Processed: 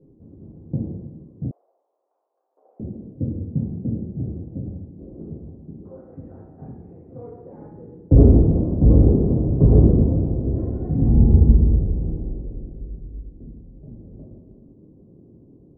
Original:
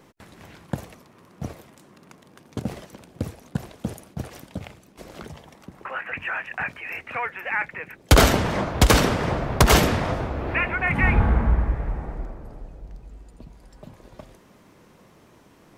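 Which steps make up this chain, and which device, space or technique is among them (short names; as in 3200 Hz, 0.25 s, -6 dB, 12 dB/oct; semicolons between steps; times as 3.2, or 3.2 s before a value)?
next room (LPF 410 Hz 24 dB/oct; reverb RT60 1.1 s, pre-delay 4 ms, DRR -7 dB); 1.51–2.8 steep high-pass 690 Hz 36 dB/oct; gain -2 dB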